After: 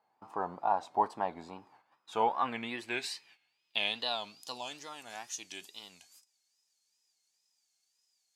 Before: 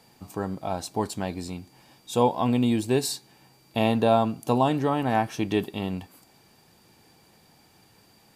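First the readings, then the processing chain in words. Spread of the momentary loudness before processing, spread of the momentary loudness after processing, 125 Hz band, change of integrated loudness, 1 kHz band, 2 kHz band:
13 LU, 16 LU, −26.0 dB, −9.5 dB, −5.5 dB, −3.0 dB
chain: tape wow and flutter 140 cents
noise gate −52 dBFS, range −14 dB
band-pass filter sweep 940 Hz → 6,500 Hz, 0:01.55–0:04.99
level +5 dB

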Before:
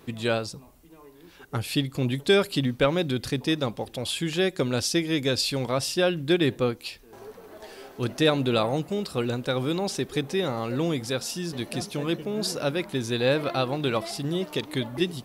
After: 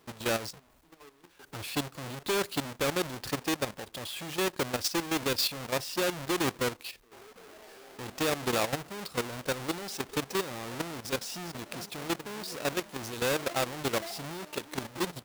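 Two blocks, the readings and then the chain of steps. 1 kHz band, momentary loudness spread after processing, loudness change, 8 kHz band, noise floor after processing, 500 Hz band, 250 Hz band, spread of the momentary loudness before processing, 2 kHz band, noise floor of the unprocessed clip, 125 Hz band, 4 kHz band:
−2.0 dB, 13 LU, −6.0 dB, −1.0 dB, −63 dBFS, −7.5 dB, −9.0 dB, 10 LU, −3.5 dB, −52 dBFS, −11.5 dB, −5.0 dB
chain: each half-wave held at its own peak
low-shelf EQ 350 Hz −9.5 dB
output level in coarse steps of 12 dB
level −3 dB

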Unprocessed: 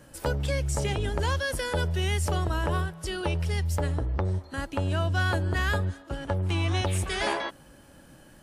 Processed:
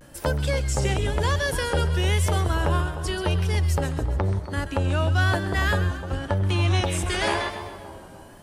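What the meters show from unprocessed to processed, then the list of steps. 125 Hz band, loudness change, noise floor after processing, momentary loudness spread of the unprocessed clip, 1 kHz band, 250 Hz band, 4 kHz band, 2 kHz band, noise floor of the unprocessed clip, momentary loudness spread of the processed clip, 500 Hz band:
+4.5 dB, +4.0 dB, −44 dBFS, 5 LU, +4.0 dB, +4.0 dB, +4.0 dB, +4.0 dB, −53 dBFS, 6 LU, +4.0 dB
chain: echo with a time of its own for lows and highs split 1,200 Hz, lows 292 ms, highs 133 ms, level −10.5 dB
pitch vibrato 0.96 Hz 82 cents
level +3.5 dB

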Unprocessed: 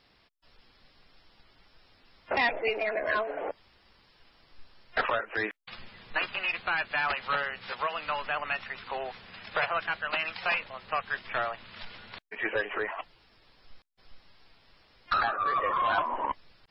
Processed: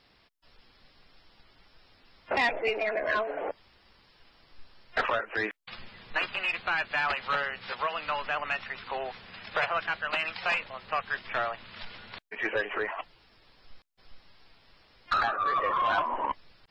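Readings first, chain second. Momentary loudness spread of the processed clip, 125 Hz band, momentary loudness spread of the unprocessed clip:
15 LU, 0.0 dB, 15 LU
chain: soft clipping −17 dBFS, distortion −26 dB
level +1 dB

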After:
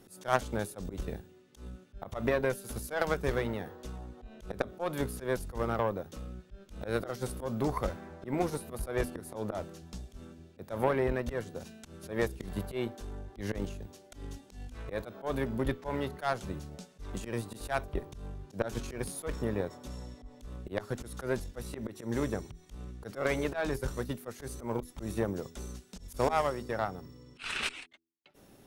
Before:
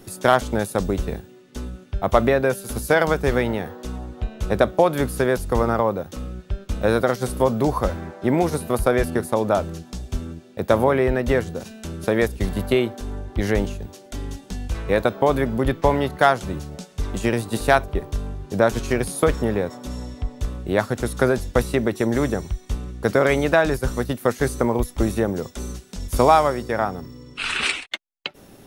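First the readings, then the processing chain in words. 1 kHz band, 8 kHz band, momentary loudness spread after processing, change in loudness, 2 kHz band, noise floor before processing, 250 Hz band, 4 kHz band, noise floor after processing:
−14.0 dB, −11.5 dB, 16 LU, −13.0 dB, −13.5 dB, −48 dBFS, −13.0 dB, −13.0 dB, −58 dBFS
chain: volume swells 114 ms
hum removal 82.84 Hz, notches 5
harmonic generator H 3 −18 dB, 4 −22 dB, 8 −36 dB, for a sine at −2.5 dBFS
level −6.5 dB

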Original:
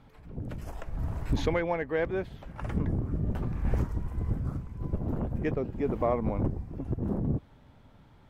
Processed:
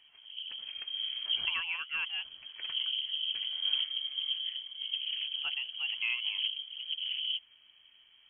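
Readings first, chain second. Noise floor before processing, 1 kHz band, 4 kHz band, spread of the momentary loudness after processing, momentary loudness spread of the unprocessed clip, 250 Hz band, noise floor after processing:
−57 dBFS, −14.0 dB, +24.0 dB, 9 LU, 11 LU, below −40 dB, −62 dBFS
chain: voice inversion scrambler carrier 3,200 Hz
level −6.5 dB

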